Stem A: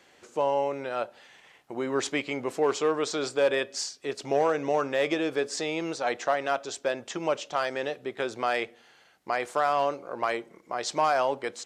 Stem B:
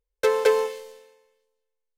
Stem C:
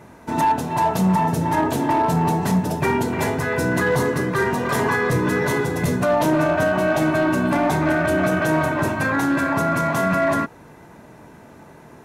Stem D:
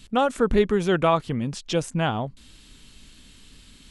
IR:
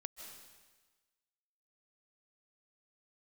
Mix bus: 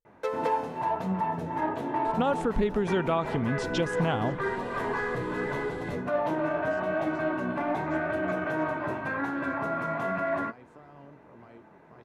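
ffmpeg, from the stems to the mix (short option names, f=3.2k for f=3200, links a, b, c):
-filter_complex "[0:a]asubboost=boost=6:cutoff=200,acrossover=split=450[a][b];[b]acompressor=threshold=-39dB:ratio=6[c];[a][c]amix=inputs=2:normalize=0,adelay=1200,volume=-16.5dB[d];[1:a]equalizer=f=890:t=o:w=1.4:g=8,aecho=1:1:6.1:0.73,volume=-13.5dB[e];[2:a]bass=f=250:g=-7,treble=f=4k:g=-12,flanger=delay=8.8:depth=9.8:regen=60:speed=0.86:shape=triangular,adelay=50,volume=-4.5dB[f];[3:a]adelay=2050,volume=-2dB,asplit=2[g][h];[h]volume=-10.5dB[i];[4:a]atrim=start_sample=2205[j];[i][j]afir=irnorm=-1:irlink=0[k];[d][e][f][g][k]amix=inputs=5:normalize=0,highshelf=f=5.2k:g=-10,alimiter=limit=-17dB:level=0:latency=1:release=166"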